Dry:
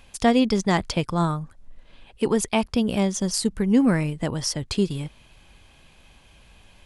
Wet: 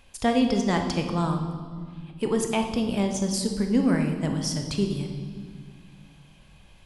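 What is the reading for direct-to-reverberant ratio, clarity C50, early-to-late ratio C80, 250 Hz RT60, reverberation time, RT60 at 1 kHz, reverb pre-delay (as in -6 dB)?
4.0 dB, 6.5 dB, 8.0 dB, 2.8 s, 1.7 s, 1.7 s, 20 ms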